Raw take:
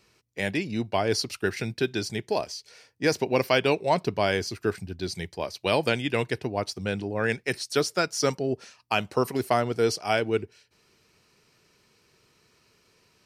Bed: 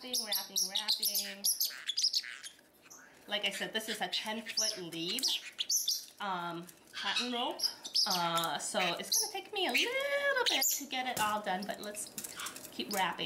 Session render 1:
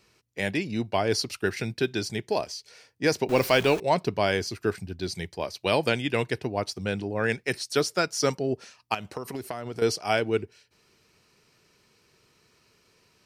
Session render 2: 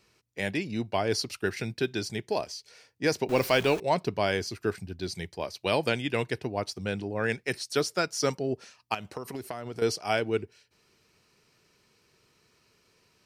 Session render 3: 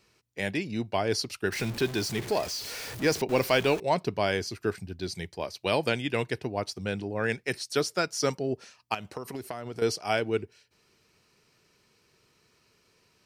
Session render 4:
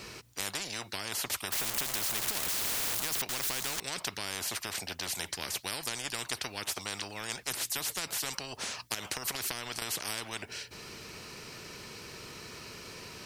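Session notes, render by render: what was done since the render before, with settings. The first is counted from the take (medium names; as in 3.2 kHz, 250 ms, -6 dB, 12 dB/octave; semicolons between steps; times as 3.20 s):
3.29–3.80 s: jump at every zero crossing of -31 dBFS; 8.94–9.82 s: compression 12:1, threshold -29 dBFS
trim -2.5 dB
1.52–3.22 s: jump at every zero crossing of -33 dBFS
compression, threshold -26 dBFS, peak gain reduction 8 dB; spectrum-flattening compressor 10:1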